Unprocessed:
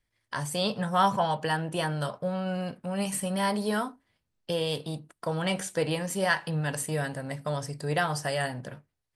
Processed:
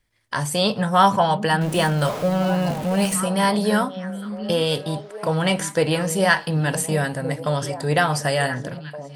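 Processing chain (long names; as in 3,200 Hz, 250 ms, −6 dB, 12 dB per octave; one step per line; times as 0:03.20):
0:01.61–0:03.14: converter with a step at zero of −35 dBFS
echo through a band-pass that steps 735 ms, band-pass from 220 Hz, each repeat 1.4 octaves, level −7 dB
level +8 dB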